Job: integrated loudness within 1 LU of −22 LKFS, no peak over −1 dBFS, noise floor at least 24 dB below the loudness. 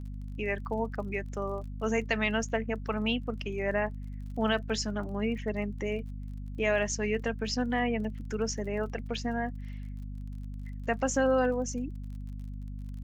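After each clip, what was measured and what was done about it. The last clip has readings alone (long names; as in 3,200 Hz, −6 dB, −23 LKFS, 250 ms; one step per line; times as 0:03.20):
crackle rate 33 per second; mains hum 50 Hz; hum harmonics up to 250 Hz; level of the hum −36 dBFS; integrated loudness −32.0 LKFS; sample peak −14.0 dBFS; target loudness −22.0 LKFS
→ click removal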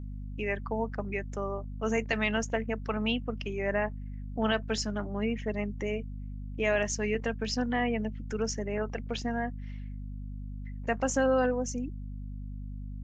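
crackle rate 0.077 per second; mains hum 50 Hz; hum harmonics up to 250 Hz; level of the hum −36 dBFS
→ hum removal 50 Hz, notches 5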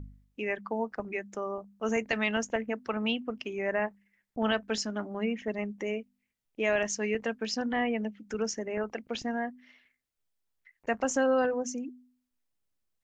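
mains hum none found; integrated loudness −32.0 LKFS; sample peak −14.5 dBFS; target loudness −22.0 LKFS
→ level +10 dB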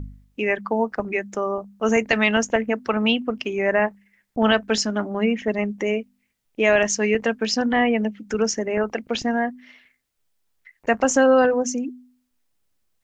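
integrated loudness −22.0 LKFS; sample peak −4.5 dBFS; background noise floor −72 dBFS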